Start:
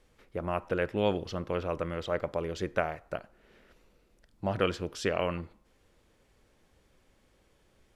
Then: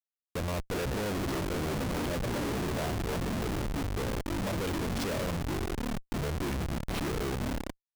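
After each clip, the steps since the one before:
delay with pitch and tempo change per echo 272 ms, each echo −5 semitones, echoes 3
comparator with hysteresis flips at −37.5 dBFS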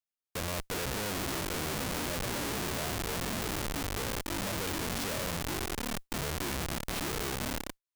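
spectral envelope flattened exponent 0.6
level −2.5 dB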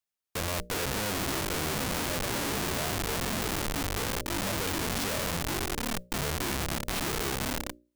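mains-hum notches 60/120/180/240/300/360/420/480/540/600 Hz
level +3.5 dB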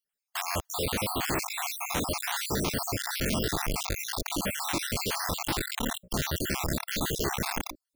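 time-frequency cells dropped at random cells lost 58%
level +4.5 dB

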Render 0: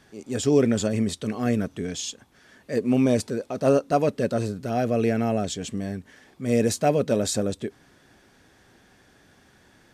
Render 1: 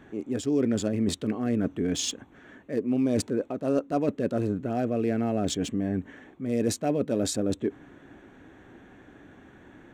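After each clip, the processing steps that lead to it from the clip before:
adaptive Wiener filter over 9 samples
parametric band 300 Hz +8 dB 0.59 octaves
reversed playback
downward compressor 4 to 1, threshold −29 dBFS, peak gain reduction 16 dB
reversed playback
level +4.5 dB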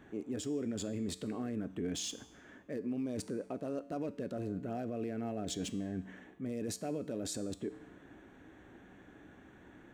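high-shelf EQ 8,800 Hz +3.5 dB
brickwall limiter −23.5 dBFS, peak gain reduction 11 dB
tuned comb filter 63 Hz, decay 0.86 s, harmonics odd, mix 60%
level +1.5 dB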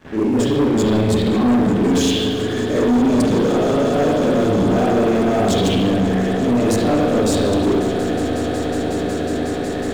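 echo that builds up and dies away 183 ms, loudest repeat 8, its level −17.5 dB
spring reverb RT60 1.3 s, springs 37/49 ms, chirp 35 ms, DRR −9 dB
leveller curve on the samples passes 3
level +5 dB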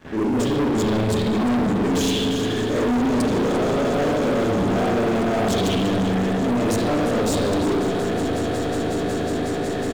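single-tap delay 348 ms −10 dB
soft clipping −17.5 dBFS, distortion −13 dB

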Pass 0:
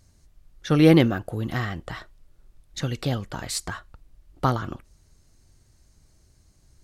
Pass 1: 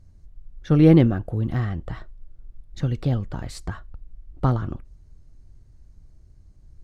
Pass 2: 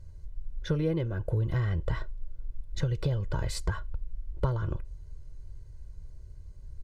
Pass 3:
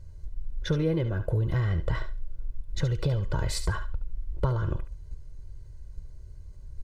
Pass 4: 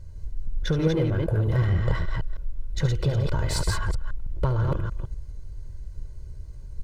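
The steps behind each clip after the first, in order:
spectral tilt −3 dB per octave; level −4 dB
downward compressor 8 to 1, threshold −26 dBFS, peak gain reduction 17 dB; comb filter 2 ms, depth 89%
in parallel at 0 dB: output level in coarse steps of 19 dB; on the sum: feedback echo with a high-pass in the loop 71 ms, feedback 18%, high-pass 620 Hz, level −9.5 dB
delay that plays each chunk backwards 158 ms, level −3 dB; in parallel at −5.5 dB: hard clipping −29 dBFS, distortion −7 dB

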